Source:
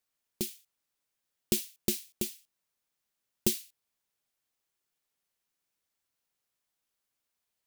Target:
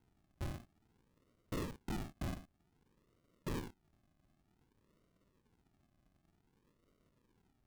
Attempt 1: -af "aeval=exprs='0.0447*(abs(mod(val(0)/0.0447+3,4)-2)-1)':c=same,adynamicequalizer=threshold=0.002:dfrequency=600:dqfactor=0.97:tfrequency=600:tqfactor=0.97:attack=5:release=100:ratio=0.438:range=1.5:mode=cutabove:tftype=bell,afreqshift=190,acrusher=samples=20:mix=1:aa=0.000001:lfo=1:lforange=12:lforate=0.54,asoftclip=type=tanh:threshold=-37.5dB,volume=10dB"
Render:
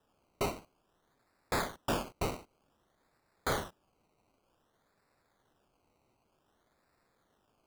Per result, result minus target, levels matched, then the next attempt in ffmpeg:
decimation with a swept rate: distortion -19 dB; soft clip: distortion -4 dB
-af "aeval=exprs='0.0447*(abs(mod(val(0)/0.0447+3,4)-2)-1)':c=same,adynamicequalizer=threshold=0.002:dfrequency=600:dqfactor=0.97:tfrequency=600:tqfactor=0.97:attack=5:release=100:ratio=0.438:range=1.5:mode=cutabove:tftype=bell,afreqshift=190,acrusher=samples=74:mix=1:aa=0.000001:lfo=1:lforange=44.4:lforate=0.54,asoftclip=type=tanh:threshold=-37.5dB,volume=10dB"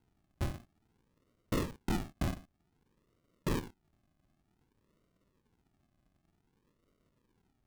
soft clip: distortion -5 dB
-af "aeval=exprs='0.0447*(abs(mod(val(0)/0.0447+3,4)-2)-1)':c=same,adynamicequalizer=threshold=0.002:dfrequency=600:dqfactor=0.97:tfrequency=600:tqfactor=0.97:attack=5:release=100:ratio=0.438:range=1.5:mode=cutabove:tftype=bell,afreqshift=190,acrusher=samples=74:mix=1:aa=0.000001:lfo=1:lforange=44.4:lforate=0.54,asoftclip=type=tanh:threshold=-47dB,volume=10dB"

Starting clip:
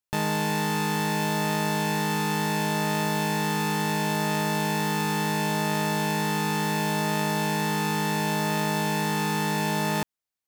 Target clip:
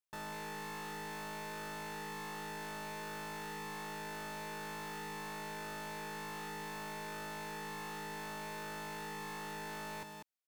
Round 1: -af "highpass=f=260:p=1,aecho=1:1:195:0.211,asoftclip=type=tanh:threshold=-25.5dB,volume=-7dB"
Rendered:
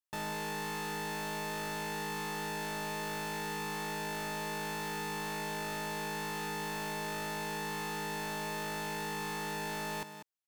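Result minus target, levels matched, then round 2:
soft clip: distortion -6 dB
-af "highpass=f=260:p=1,aecho=1:1:195:0.211,asoftclip=type=tanh:threshold=-35.5dB,volume=-7dB"

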